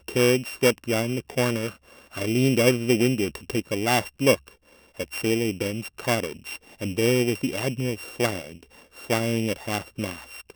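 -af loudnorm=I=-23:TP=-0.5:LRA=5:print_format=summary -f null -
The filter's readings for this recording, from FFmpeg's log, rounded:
Input Integrated:    -25.3 LUFS
Input True Peak:      -5.5 dBTP
Input LRA:             5.6 LU
Input Threshold:     -35.9 LUFS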